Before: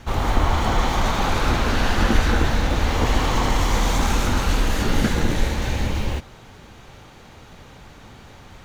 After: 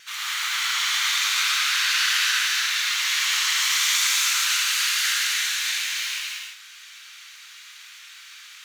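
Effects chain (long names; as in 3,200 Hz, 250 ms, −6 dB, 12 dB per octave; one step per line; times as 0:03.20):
Bessel high-pass filter 2,500 Hz, order 8
pitch vibrato 1.1 Hz 6.9 cents
reverb whose tail is shaped and stops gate 370 ms flat, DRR −4.5 dB
level +5 dB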